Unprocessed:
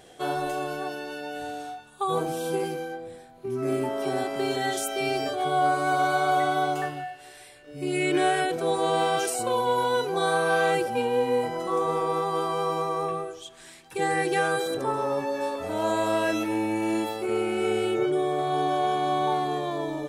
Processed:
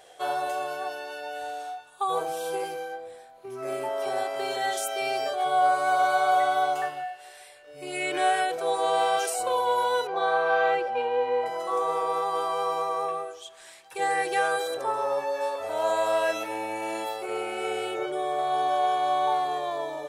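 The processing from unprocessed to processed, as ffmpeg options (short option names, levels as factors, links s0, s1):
-filter_complex "[0:a]asettb=1/sr,asplit=3[s0][s1][s2];[s0]atrim=end=10.074[s3];[s1]atrim=start=10.07:end=11.46,asetpts=PTS-STARTPTS,afade=t=in:d=0.004:c=qsin,afade=t=out:st=1.386:d=0.004:c=qsin,highpass=110,lowpass=3100[s4];[s2]atrim=start=11.456[s5];[s3][s4]acrossfade=d=0.004:c1=hsin:c2=qsin[s6];[s6][s5]acrossfade=d=0.004:c1=qsin:c2=hsin,lowshelf=f=390:t=q:w=1.5:g=-13,volume=0.891"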